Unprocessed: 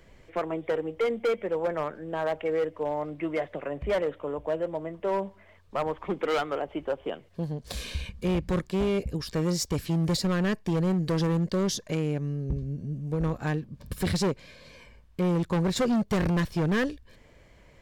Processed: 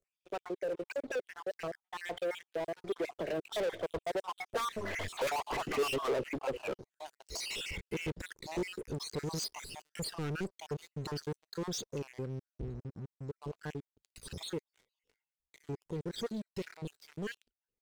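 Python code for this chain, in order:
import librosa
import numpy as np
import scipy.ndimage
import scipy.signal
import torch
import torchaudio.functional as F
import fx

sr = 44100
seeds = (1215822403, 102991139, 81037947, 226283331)

p1 = fx.spec_dropout(x, sr, seeds[0], share_pct=60)
p2 = fx.doppler_pass(p1, sr, speed_mps=33, closest_m=3.2, pass_at_s=5.15)
p3 = scipy.signal.sosfilt(scipy.signal.butter(4, 9300.0, 'lowpass', fs=sr, output='sos'), p2)
p4 = fx.high_shelf(p3, sr, hz=3400.0, db=12.0)
p5 = fx.over_compress(p4, sr, threshold_db=-38.0, ratio=-1.0)
p6 = p4 + (p5 * librosa.db_to_amplitude(0.0))
p7 = np.clip(p6, -10.0 ** (-36.5 / 20.0), 10.0 ** (-36.5 / 20.0))
p8 = fx.leveller(p7, sr, passes=5)
p9 = fx.peak_eq(p8, sr, hz=410.0, db=8.0, octaves=0.82)
p10 = fx.record_warp(p9, sr, rpm=33.33, depth_cents=160.0)
y = p10 * librosa.db_to_amplitude(3.0)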